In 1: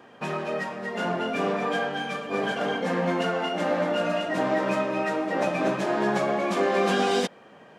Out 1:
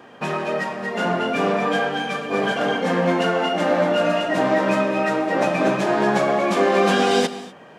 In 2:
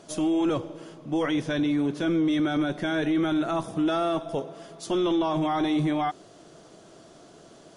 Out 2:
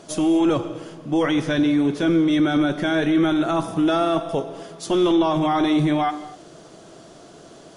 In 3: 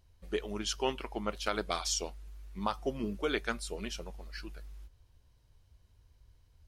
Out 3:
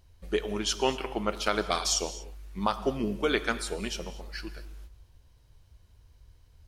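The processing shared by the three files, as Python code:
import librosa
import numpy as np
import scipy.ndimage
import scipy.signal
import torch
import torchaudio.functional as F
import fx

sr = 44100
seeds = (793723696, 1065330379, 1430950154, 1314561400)

y = fx.rev_gated(x, sr, seeds[0], gate_ms=270, shape='flat', drr_db=12.0)
y = y * librosa.db_to_amplitude(5.5)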